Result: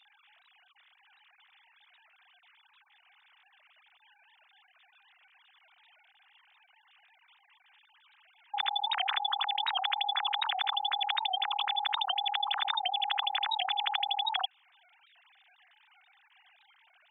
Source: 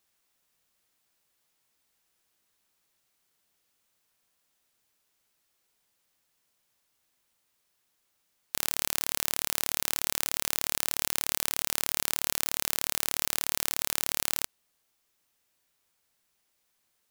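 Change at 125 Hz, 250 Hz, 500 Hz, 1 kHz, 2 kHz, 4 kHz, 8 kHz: under -35 dB, under -30 dB, -5.5 dB, +12.0 dB, +1.0 dB, +6.5 dB, under -40 dB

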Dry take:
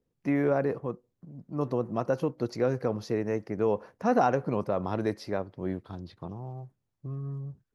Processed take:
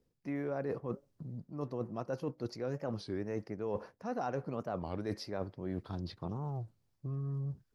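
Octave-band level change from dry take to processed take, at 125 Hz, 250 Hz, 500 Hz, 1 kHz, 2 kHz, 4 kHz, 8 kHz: -4.5 dB, -8.5 dB, -10.0 dB, -11.0 dB, -10.5 dB, -2.0 dB, n/a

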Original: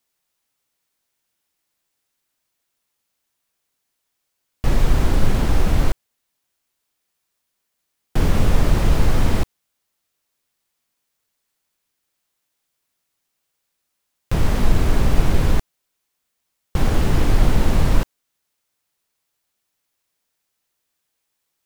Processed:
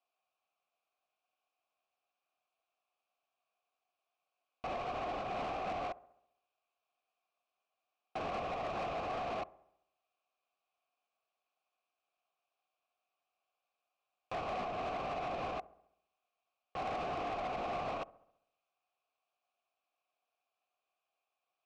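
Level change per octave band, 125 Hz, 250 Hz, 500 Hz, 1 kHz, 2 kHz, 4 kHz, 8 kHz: -32.0 dB, -23.5 dB, -11.0 dB, -6.0 dB, -14.0 dB, -17.0 dB, under -25 dB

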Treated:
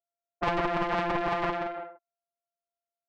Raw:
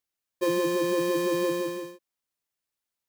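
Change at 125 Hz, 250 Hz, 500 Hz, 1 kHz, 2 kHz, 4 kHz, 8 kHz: +2.0 dB, -7.0 dB, -5.5 dB, +6.5 dB, +2.5 dB, -4.0 dB, under -15 dB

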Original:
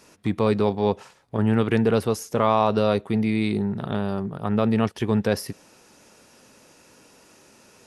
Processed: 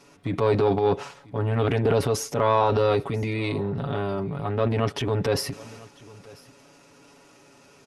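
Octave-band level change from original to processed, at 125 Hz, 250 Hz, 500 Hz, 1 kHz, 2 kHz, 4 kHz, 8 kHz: +0.5, -6.5, +0.5, 0.0, -1.0, +1.0, +3.5 dB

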